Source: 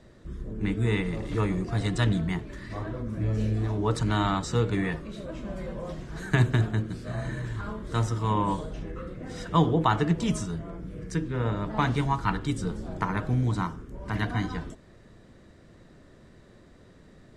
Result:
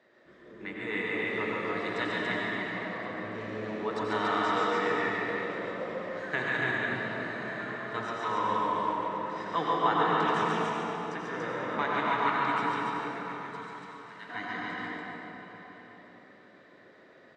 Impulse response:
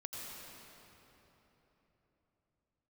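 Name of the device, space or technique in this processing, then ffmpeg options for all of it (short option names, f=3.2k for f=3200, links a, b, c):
station announcement: -filter_complex "[0:a]asettb=1/sr,asplit=3[a][b][c];[a]atrim=end=12.744[d];[b]atrim=start=12.74:end=14.29,asetpts=PTS-STARTPTS,afade=t=in:d=0.004:c=qsin,afade=t=out:st=1.546:d=0.004:c=qsin,aderivative[e];[c]atrim=start=14.286[f];[d][e]acrossfade=d=0.004:c1=hsin:c2=qsin[g];[g][f]acrossfade=d=0.004:c1=qsin:c2=hsin,highpass=430,lowpass=3.7k,equalizer=f=1.9k:t=o:w=0.54:g=6,aecho=1:1:139.9|285.7:0.631|0.708[h];[1:a]atrim=start_sample=2205[i];[h][i]afir=irnorm=-1:irlink=0,aecho=1:1:1070:0.106"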